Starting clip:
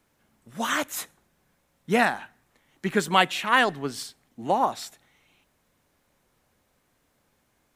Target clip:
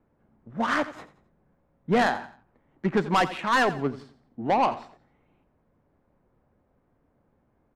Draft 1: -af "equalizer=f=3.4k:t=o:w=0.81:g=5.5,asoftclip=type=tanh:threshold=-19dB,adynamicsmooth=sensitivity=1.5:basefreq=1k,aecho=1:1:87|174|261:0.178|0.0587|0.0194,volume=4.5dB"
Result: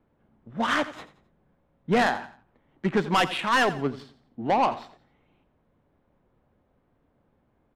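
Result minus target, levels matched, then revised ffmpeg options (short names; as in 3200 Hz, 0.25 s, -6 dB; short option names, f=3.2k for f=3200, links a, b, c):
4000 Hz band +3.5 dB
-af "equalizer=f=3.4k:t=o:w=0.81:g=-2,asoftclip=type=tanh:threshold=-19dB,adynamicsmooth=sensitivity=1.5:basefreq=1k,aecho=1:1:87|174|261:0.178|0.0587|0.0194,volume=4.5dB"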